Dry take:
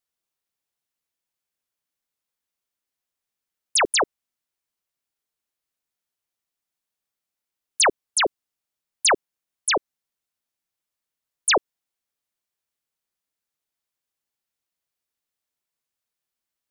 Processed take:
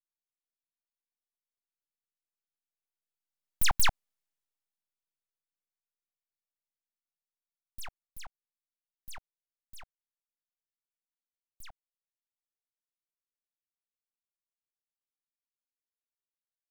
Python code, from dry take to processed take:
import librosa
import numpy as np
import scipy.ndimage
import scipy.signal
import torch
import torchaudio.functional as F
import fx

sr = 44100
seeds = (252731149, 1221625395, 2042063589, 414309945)

y = fx.doppler_pass(x, sr, speed_mps=13, closest_m=4.3, pass_at_s=3.96)
y = fx.vibrato(y, sr, rate_hz=0.64, depth_cents=6.1)
y = np.abs(y)